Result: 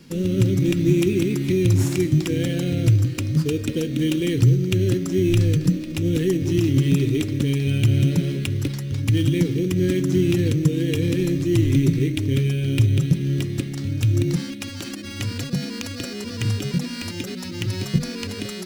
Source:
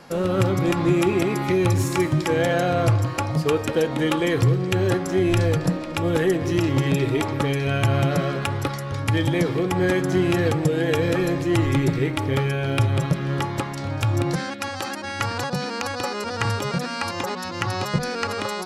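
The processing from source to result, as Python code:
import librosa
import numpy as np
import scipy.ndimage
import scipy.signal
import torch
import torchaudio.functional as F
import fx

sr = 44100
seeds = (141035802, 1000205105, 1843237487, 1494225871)

p1 = scipy.signal.sosfilt(scipy.signal.cheby1(2, 1.0, [290.0, 3100.0], 'bandstop', fs=sr, output='sos'), x)
p2 = fx.sample_hold(p1, sr, seeds[0], rate_hz=6100.0, jitter_pct=0)
y = p1 + F.gain(torch.from_numpy(p2), -5.0).numpy()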